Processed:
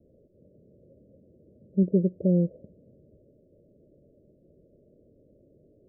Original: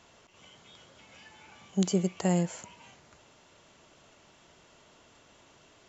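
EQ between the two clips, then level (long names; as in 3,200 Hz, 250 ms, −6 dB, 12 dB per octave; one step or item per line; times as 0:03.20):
Butterworth low-pass 590 Hz 96 dB per octave
+4.5 dB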